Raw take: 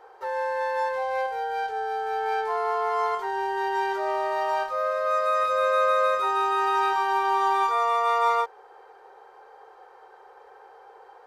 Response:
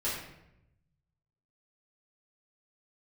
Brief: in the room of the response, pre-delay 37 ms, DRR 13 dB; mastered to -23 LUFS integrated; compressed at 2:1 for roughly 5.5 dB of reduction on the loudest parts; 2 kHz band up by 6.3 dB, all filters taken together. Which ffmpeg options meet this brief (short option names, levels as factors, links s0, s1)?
-filter_complex "[0:a]equalizer=f=2000:t=o:g=8.5,acompressor=threshold=0.0447:ratio=2,asplit=2[s0][s1];[1:a]atrim=start_sample=2205,adelay=37[s2];[s1][s2]afir=irnorm=-1:irlink=0,volume=0.106[s3];[s0][s3]amix=inputs=2:normalize=0,volume=1.58"